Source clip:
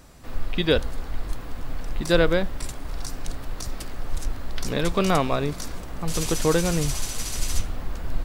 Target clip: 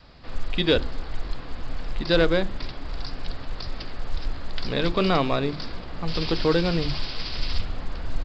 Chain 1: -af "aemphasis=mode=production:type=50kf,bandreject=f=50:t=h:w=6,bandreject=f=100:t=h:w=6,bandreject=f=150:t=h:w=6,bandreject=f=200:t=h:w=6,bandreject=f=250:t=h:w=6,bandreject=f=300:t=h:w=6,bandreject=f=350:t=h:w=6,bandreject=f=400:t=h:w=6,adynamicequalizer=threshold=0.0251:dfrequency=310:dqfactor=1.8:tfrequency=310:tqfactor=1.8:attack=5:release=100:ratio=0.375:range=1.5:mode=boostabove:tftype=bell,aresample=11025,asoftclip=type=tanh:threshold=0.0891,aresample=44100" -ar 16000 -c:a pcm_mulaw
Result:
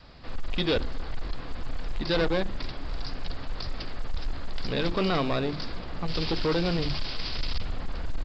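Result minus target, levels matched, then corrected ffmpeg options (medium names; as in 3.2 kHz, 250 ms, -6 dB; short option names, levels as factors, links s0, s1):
saturation: distortion +12 dB
-af "aemphasis=mode=production:type=50kf,bandreject=f=50:t=h:w=6,bandreject=f=100:t=h:w=6,bandreject=f=150:t=h:w=6,bandreject=f=200:t=h:w=6,bandreject=f=250:t=h:w=6,bandreject=f=300:t=h:w=6,bandreject=f=350:t=h:w=6,bandreject=f=400:t=h:w=6,adynamicequalizer=threshold=0.0251:dfrequency=310:dqfactor=1.8:tfrequency=310:tqfactor=1.8:attack=5:release=100:ratio=0.375:range=1.5:mode=boostabove:tftype=bell,aresample=11025,asoftclip=type=tanh:threshold=0.316,aresample=44100" -ar 16000 -c:a pcm_mulaw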